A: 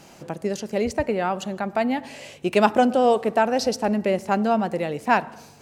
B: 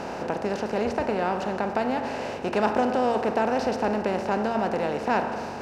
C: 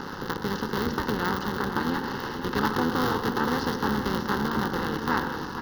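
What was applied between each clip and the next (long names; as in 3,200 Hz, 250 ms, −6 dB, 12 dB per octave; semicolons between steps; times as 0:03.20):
compressor on every frequency bin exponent 0.4; high-shelf EQ 4,600 Hz −11 dB; hum removal 115.5 Hz, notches 29; level −8.5 dB
sub-harmonics by changed cycles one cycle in 3, muted; phaser with its sweep stopped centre 2,400 Hz, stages 6; single-tap delay 473 ms −9 dB; level +4.5 dB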